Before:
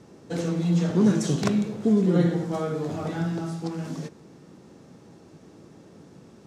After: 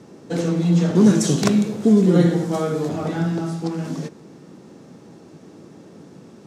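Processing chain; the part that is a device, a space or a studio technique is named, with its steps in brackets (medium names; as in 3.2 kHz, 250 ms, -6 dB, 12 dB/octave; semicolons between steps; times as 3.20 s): 0.95–2.89 s: treble shelf 5.1 kHz +8 dB; filter by subtraction (in parallel: low-pass 210 Hz 12 dB/octave + polarity flip); on the sum: trim +4.5 dB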